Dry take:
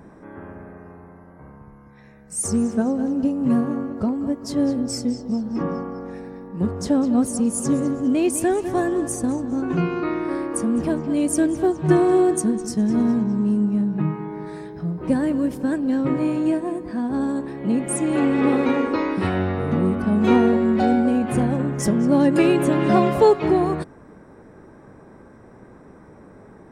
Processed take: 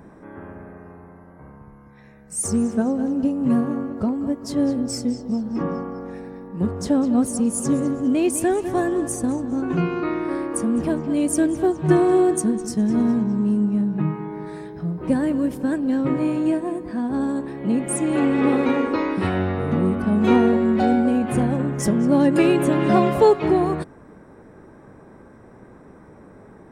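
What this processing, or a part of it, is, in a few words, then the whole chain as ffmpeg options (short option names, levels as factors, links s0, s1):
exciter from parts: -filter_complex "[0:a]asplit=2[s0][s1];[s1]highpass=2500,asoftclip=type=tanh:threshold=0.0237,highpass=f=4100:w=0.5412,highpass=f=4100:w=1.3066,volume=0.211[s2];[s0][s2]amix=inputs=2:normalize=0"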